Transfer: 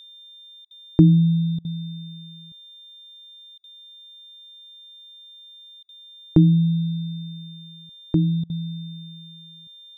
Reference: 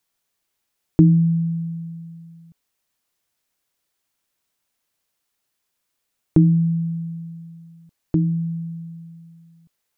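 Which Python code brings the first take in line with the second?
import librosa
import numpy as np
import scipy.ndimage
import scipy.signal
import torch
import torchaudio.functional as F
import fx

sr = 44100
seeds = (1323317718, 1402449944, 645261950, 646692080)

y = fx.notch(x, sr, hz=3600.0, q=30.0)
y = fx.fix_interpolate(y, sr, at_s=(0.65, 1.59, 3.58, 5.83, 8.44), length_ms=57.0)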